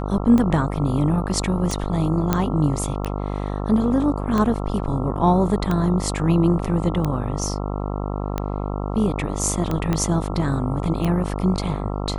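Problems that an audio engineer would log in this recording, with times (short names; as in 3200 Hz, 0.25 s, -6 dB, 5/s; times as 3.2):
buzz 50 Hz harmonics 27 -26 dBFS
tick 45 rpm -11 dBFS
2.33 pop -5 dBFS
9.93 pop -9 dBFS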